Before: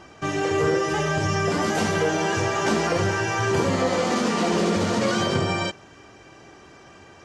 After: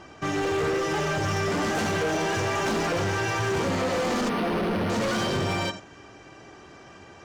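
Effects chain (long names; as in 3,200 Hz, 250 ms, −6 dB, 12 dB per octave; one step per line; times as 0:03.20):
high-shelf EQ 7,800 Hz −5 dB
reverb whose tail is shaped and stops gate 110 ms rising, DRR 11 dB
gain into a clipping stage and back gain 23 dB
0:04.29–0:04.90: linearly interpolated sample-rate reduction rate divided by 6×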